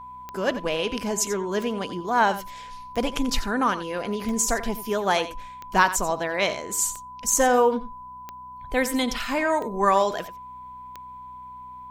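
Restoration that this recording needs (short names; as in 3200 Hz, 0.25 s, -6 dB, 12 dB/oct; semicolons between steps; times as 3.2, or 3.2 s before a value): de-click; de-hum 62.7 Hz, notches 4; notch 1000 Hz, Q 30; inverse comb 88 ms -13.5 dB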